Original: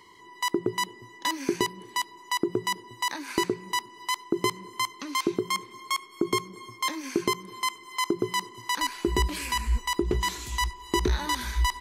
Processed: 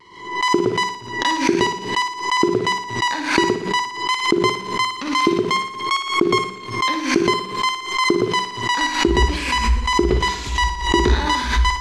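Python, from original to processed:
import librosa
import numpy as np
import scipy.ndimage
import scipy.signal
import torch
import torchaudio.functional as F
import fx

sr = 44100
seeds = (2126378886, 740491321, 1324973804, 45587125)

p1 = fx.quant_dither(x, sr, seeds[0], bits=6, dither='none')
p2 = x + F.gain(torch.from_numpy(p1), -7.5).numpy()
p3 = scipy.signal.sosfilt(scipy.signal.butter(2, 5000.0, 'lowpass', fs=sr, output='sos'), p2)
p4 = fx.doubler(p3, sr, ms=46.0, db=-11)
p5 = fx.room_flutter(p4, sr, wall_m=10.0, rt60_s=0.56)
p6 = fx.vibrato(p5, sr, rate_hz=0.53, depth_cents=21.0)
p7 = fx.pre_swell(p6, sr, db_per_s=83.0)
y = F.gain(torch.from_numpy(p7), 5.0).numpy()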